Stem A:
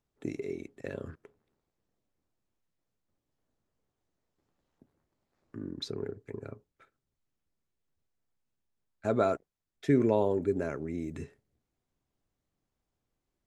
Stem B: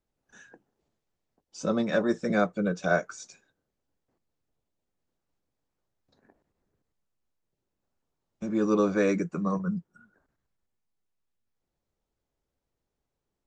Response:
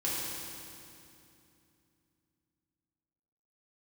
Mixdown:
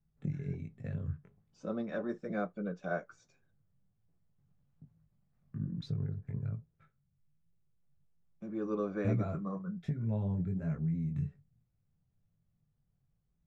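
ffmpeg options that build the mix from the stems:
-filter_complex "[0:a]lowshelf=f=230:t=q:w=3:g=13,acompressor=threshold=-25dB:ratio=6,flanger=delay=18:depth=3.9:speed=1.2,volume=1dB[a];[1:a]highshelf=f=3.9k:g=-8,volume=-6dB[b];[a][b]amix=inputs=2:normalize=0,highshelf=f=4.3k:g=-12,bandreject=f=930:w=15,flanger=delay=4.2:depth=7:regen=-68:speed=0.37:shape=triangular"

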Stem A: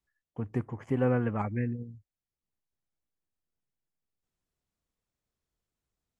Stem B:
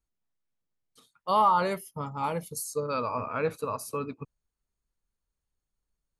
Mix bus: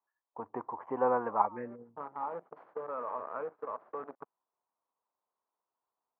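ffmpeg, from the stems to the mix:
-filter_complex "[0:a]lowpass=f=980:t=q:w=4.9,volume=0dB,asplit=2[a][b];[1:a]acrusher=bits=6:dc=4:mix=0:aa=0.000001,lowpass=f=1.2k:w=0.5412,lowpass=f=1.2k:w=1.3066,acompressor=threshold=-30dB:ratio=6,volume=-1.5dB[c];[b]apad=whole_len=273104[d];[c][d]sidechaincompress=threshold=-46dB:ratio=4:attack=7.1:release=137[e];[a][e]amix=inputs=2:normalize=0,highpass=490"

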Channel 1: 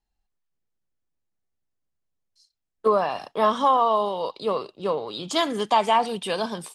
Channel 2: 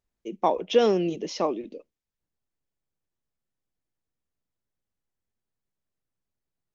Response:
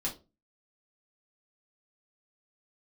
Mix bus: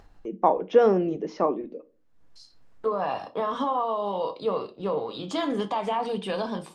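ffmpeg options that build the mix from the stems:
-filter_complex "[0:a]aemphasis=mode=reproduction:type=75kf,alimiter=limit=-18.5dB:level=0:latency=1:release=73,volume=-3.5dB,asplit=2[a][b];[b]volume=-5.5dB[c];[1:a]lowpass=6.1k,highshelf=f=2.1k:t=q:w=1.5:g=-11,volume=-0.5dB,asplit=2[d][e];[e]volume=-12.5dB[f];[2:a]atrim=start_sample=2205[g];[c][f]amix=inputs=2:normalize=0[h];[h][g]afir=irnorm=-1:irlink=0[i];[a][d][i]amix=inputs=3:normalize=0,acompressor=mode=upward:threshold=-34dB:ratio=2.5"

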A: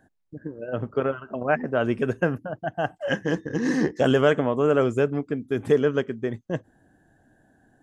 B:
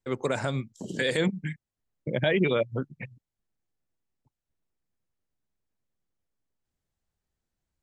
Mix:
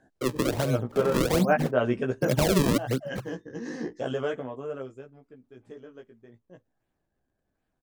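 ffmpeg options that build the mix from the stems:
-filter_complex "[0:a]lowpass=6.4k,bass=f=250:g=0,treble=f=4k:g=7,flanger=delay=15:depth=2.2:speed=0.41,volume=-0.5dB,afade=t=out:st=1.92:d=0.51:silence=0.334965,afade=t=out:st=4.25:d=0.78:silence=0.237137[a];[1:a]acrusher=samples=35:mix=1:aa=0.000001:lfo=1:lforange=56:lforate=1.3,acrossover=split=300|3000[b][c][d];[c]acompressor=threshold=-33dB:ratio=2.5[e];[b][e][d]amix=inputs=3:normalize=0,adelay=150,volume=2.5dB[f];[a][f]amix=inputs=2:normalize=0,equalizer=f=560:t=o:w=1.6:g=4"

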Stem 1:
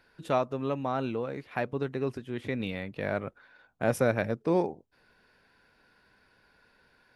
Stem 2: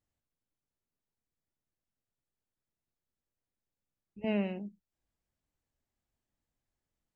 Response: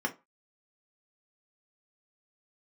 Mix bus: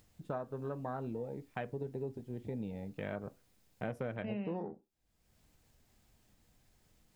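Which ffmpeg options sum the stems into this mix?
-filter_complex "[0:a]afwtdn=0.0178,agate=range=-33dB:threshold=-48dB:ratio=3:detection=peak,volume=-4.5dB,asplit=2[a][b];[b]volume=-16.5dB[c];[1:a]acompressor=mode=upward:threshold=-47dB:ratio=2.5,volume=-2.5dB,asplit=2[d][e];[e]volume=-16dB[f];[2:a]atrim=start_sample=2205[g];[c][f]amix=inputs=2:normalize=0[h];[h][g]afir=irnorm=-1:irlink=0[i];[a][d][i]amix=inputs=3:normalize=0,acompressor=threshold=-35dB:ratio=6"

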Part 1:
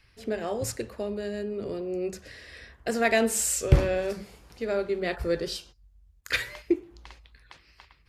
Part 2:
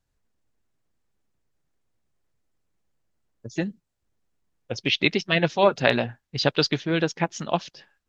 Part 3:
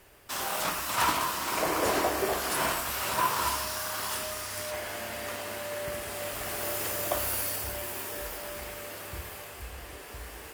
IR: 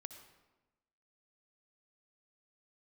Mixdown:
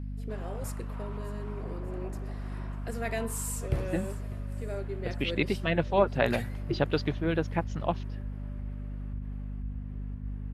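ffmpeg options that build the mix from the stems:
-filter_complex "[0:a]aemphasis=mode=production:type=75fm,volume=-9.5dB,asplit=2[a][b];[b]volume=-18.5dB[c];[1:a]adelay=350,volume=-4.5dB[d];[2:a]lowpass=f=1.7k:p=1,asubboost=boost=6.5:cutoff=210,alimiter=level_in=1dB:limit=-24dB:level=0:latency=1:release=51,volume=-1dB,volume=-12.5dB[e];[c]aecho=0:1:598|1196|1794|2392|2990:1|0.39|0.152|0.0593|0.0231[f];[a][d][e][f]amix=inputs=4:normalize=0,lowpass=f=11k:w=0.5412,lowpass=f=11k:w=1.3066,equalizer=f=6.3k:t=o:w=2:g=-14,aeval=exprs='val(0)+0.0178*(sin(2*PI*50*n/s)+sin(2*PI*2*50*n/s)/2+sin(2*PI*3*50*n/s)/3+sin(2*PI*4*50*n/s)/4+sin(2*PI*5*50*n/s)/5)':c=same"

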